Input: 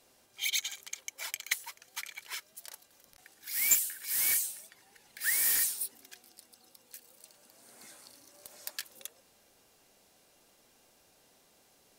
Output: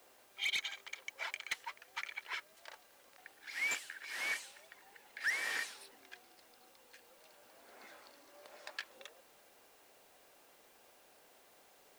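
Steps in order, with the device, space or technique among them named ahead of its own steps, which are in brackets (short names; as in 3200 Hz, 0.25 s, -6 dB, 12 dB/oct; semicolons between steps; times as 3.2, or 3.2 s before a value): aircraft radio (BPF 390–2500 Hz; hard clip -33 dBFS, distortion -10 dB; white noise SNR 22 dB); gain +3.5 dB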